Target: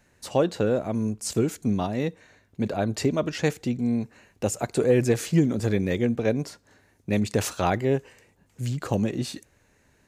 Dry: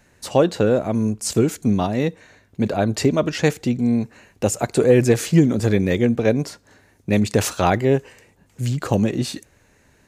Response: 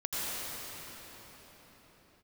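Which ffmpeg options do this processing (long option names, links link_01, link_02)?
-af "volume=-6dB"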